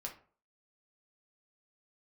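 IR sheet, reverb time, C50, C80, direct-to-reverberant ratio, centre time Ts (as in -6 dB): 0.45 s, 10.5 dB, 16.0 dB, 0.0 dB, 16 ms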